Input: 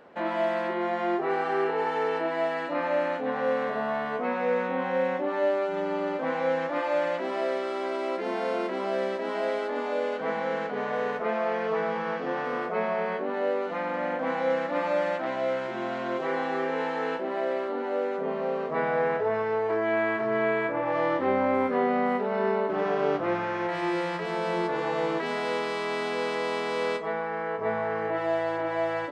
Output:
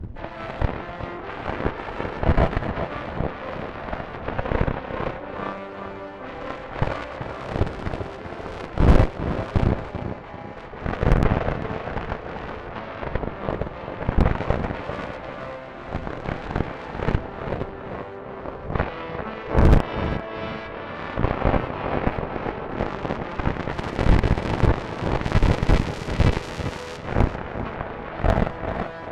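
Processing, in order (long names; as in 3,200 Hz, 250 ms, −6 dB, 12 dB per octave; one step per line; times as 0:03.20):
wind on the microphone 88 Hz −22 dBFS
0:09.91–0:10.57: phaser with its sweep stopped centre 2,200 Hz, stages 8
harmonic generator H 3 −17 dB, 4 −10 dB, 7 −16 dB, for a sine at −7 dBFS
on a send: tape delay 391 ms, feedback 48%, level −6 dB, low-pass 4,000 Hz
on the sum: level −1.5 dB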